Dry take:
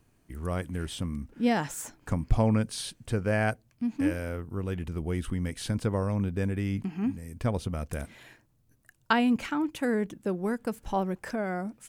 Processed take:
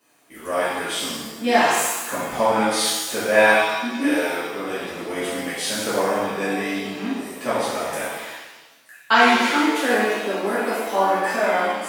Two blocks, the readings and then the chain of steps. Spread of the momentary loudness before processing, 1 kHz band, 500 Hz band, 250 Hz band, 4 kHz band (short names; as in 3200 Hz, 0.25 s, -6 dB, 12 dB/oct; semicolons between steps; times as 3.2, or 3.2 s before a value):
9 LU, +14.0 dB, +11.5 dB, +3.5 dB, +15.5 dB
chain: HPF 530 Hz 12 dB/oct; shimmer reverb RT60 1.1 s, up +7 st, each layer -8 dB, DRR -12 dB; gain +2 dB